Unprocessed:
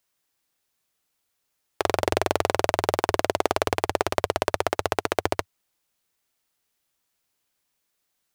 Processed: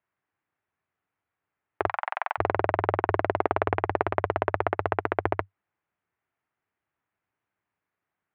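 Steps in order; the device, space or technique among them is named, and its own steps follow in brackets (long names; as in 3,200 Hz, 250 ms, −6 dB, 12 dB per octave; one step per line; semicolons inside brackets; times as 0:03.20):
0:01.87–0:02.38: Butterworth high-pass 790 Hz 36 dB per octave
bass cabinet (loudspeaker in its box 77–2,100 Hz, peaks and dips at 97 Hz +6 dB, 240 Hz −3 dB, 520 Hz −5 dB)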